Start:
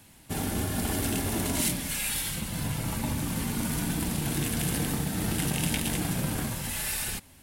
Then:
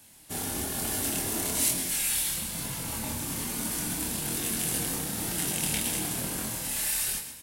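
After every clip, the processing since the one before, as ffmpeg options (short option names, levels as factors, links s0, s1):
-filter_complex "[0:a]bass=f=250:g=-6,treble=f=4000:g=7,asplit=6[s0][s1][s2][s3][s4][s5];[s1]adelay=128,afreqshift=38,volume=0.335[s6];[s2]adelay=256,afreqshift=76,volume=0.148[s7];[s3]adelay=384,afreqshift=114,volume=0.0646[s8];[s4]adelay=512,afreqshift=152,volume=0.0285[s9];[s5]adelay=640,afreqshift=190,volume=0.0126[s10];[s0][s6][s7][s8][s9][s10]amix=inputs=6:normalize=0,flanger=delay=22.5:depth=7.2:speed=1.1"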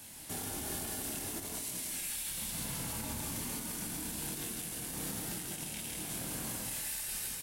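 -af "aecho=1:1:163:0.562,acompressor=threshold=0.0158:ratio=6,alimiter=level_in=2.82:limit=0.0631:level=0:latency=1:release=165,volume=0.355,volume=1.68"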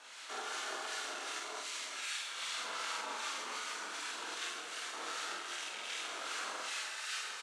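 -filter_complex "[0:a]acrossover=split=1200[s0][s1];[s0]aeval=exprs='val(0)*(1-0.5/2+0.5/2*cos(2*PI*2.6*n/s))':c=same[s2];[s1]aeval=exprs='val(0)*(1-0.5/2-0.5/2*cos(2*PI*2.6*n/s))':c=same[s3];[s2][s3]amix=inputs=2:normalize=0,highpass=f=500:w=0.5412,highpass=f=500:w=1.3066,equalizer=f=560:t=q:w=4:g=-5,equalizer=f=800:t=q:w=4:g=-5,equalizer=f=1300:t=q:w=4:g=10,equalizer=f=5100:t=q:w=4:g=-5,lowpass=f=6000:w=0.5412,lowpass=f=6000:w=1.3066,asplit=2[s4][s5];[s5]adelay=46,volume=0.708[s6];[s4][s6]amix=inputs=2:normalize=0,volume=2"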